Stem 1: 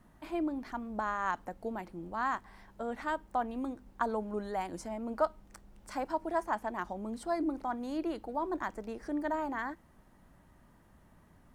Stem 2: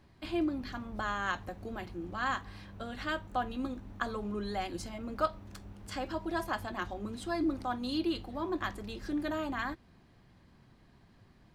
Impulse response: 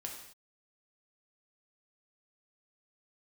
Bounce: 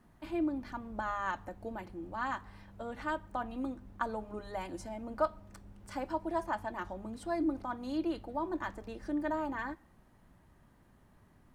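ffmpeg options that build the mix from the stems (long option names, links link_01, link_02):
-filter_complex "[0:a]volume=-4dB,asplit=2[link_01][link_02];[link_02]volume=-16.5dB[link_03];[1:a]lowpass=frequency=2300:poles=1,volume=-7.5dB[link_04];[2:a]atrim=start_sample=2205[link_05];[link_03][link_05]afir=irnorm=-1:irlink=0[link_06];[link_01][link_04][link_06]amix=inputs=3:normalize=0"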